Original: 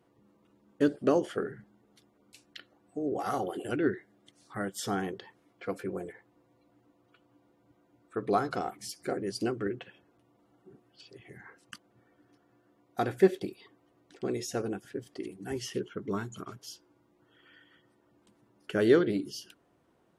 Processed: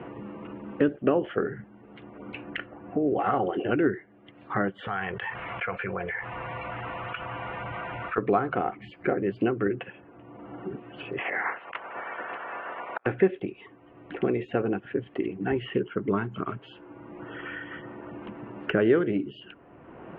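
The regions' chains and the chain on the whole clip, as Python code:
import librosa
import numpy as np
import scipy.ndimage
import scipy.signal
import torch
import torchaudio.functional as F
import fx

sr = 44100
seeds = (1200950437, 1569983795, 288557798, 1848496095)

y = fx.chain(x, sr, fx.tone_stack(knobs='10-0-10'),
    fx.env_flatten(amount_pct=70), at=(4.87, 8.18))
y = fx.spec_clip(y, sr, under_db=17, at=(11.17, 13.05), fade=0.02)
y = fx.over_compress(y, sr, threshold_db=-50.0, ratio=-0.5, at=(11.17, 13.05), fade=0.02)
y = fx.bandpass_edges(y, sr, low_hz=620.0, high_hz=3700.0, at=(11.17, 13.05), fade=0.02)
y = scipy.signal.sosfilt(scipy.signal.ellip(4, 1.0, 50, 2800.0, 'lowpass', fs=sr, output='sos'), y)
y = fx.band_squash(y, sr, depth_pct=70)
y = y * 10.0 ** (8.0 / 20.0)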